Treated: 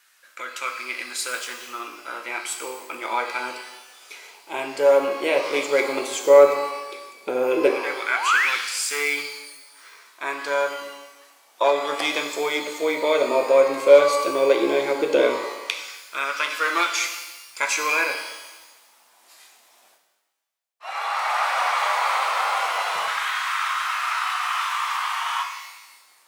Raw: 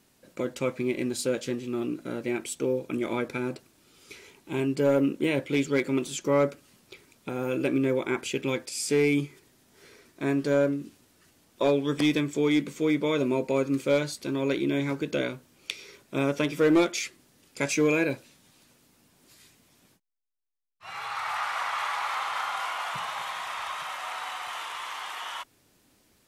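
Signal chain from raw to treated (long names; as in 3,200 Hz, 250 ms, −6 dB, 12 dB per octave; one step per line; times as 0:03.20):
sound drawn into the spectrogram rise, 0:08.09–0:08.50, 560–2,700 Hz −30 dBFS
auto-filter high-pass saw down 0.13 Hz 440–1,500 Hz
reverb with rising layers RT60 1.1 s, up +12 semitones, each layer −8 dB, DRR 4 dB
level +4.5 dB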